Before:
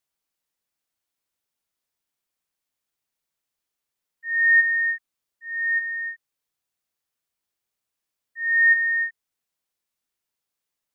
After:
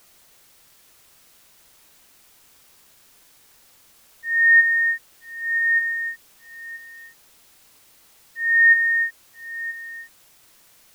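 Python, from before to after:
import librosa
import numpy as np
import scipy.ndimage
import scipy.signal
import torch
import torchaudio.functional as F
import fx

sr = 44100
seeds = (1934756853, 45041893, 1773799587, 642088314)

p1 = fx.tilt_eq(x, sr, slope=-4.5)
p2 = fx.quant_dither(p1, sr, seeds[0], bits=8, dither='triangular')
p3 = p1 + F.gain(torch.from_numpy(p2), -11.0).numpy()
p4 = p3 + 10.0 ** (-16.0 / 20.0) * np.pad(p3, (int(978 * sr / 1000.0), 0))[:len(p3)]
y = F.gain(torch.from_numpy(p4), 4.5).numpy()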